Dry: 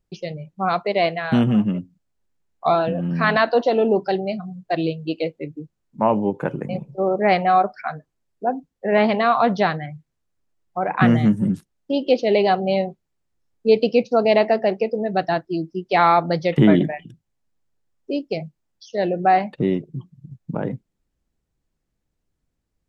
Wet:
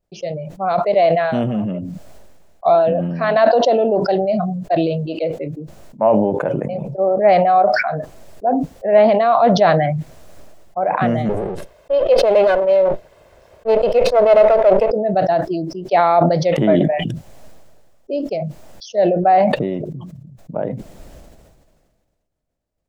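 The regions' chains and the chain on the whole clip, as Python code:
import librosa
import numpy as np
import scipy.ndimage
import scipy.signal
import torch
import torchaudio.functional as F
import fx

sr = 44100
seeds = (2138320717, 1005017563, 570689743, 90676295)

y = fx.chain(x, sr, fx.lower_of_two(delay_ms=1.9),
    fx.bass_treble(bass_db=-5, treble_db=-11), at=(11.29, 14.91))
y = fx.peak_eq(y, sr, hz=620.0, db=13.5, octaves=0.63)
y = fx.sustainer(y, sr, db_per_s=32.0)
y = F.gain(torch.from_numpy(y), -5.0).numpy()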